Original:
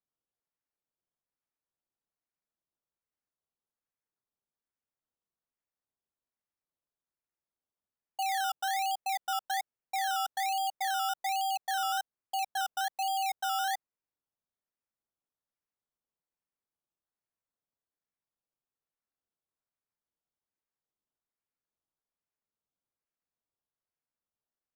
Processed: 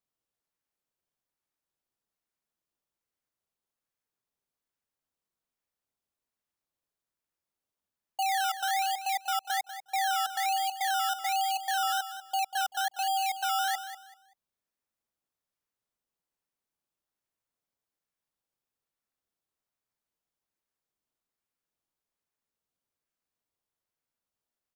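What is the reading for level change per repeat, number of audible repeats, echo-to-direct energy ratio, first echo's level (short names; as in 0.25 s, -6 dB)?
-12.0 dB, 2, -11.0 dB, -11.5 dB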